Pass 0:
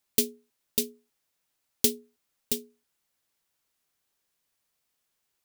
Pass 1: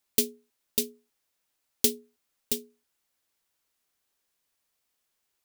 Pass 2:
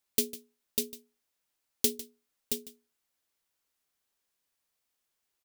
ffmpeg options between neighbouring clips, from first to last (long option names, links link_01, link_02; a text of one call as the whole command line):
ffmpeg -i in.wav -af "equalizer=frequency=140:width=1.8:gain=-5" out.wav
ffmpeg -i in.wav -af "aecho=1:1:151:0.15,volume=-3.5dB" out.wav